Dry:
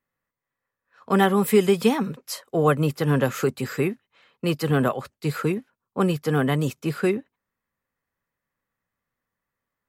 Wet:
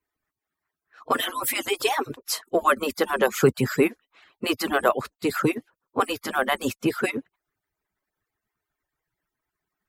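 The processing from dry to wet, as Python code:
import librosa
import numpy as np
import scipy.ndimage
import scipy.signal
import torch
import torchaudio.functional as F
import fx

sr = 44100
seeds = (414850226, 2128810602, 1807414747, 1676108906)

y = fx.hpss_only(x, sr, part='percussive')
y = y * librosa.db_to_amplitude(5.0)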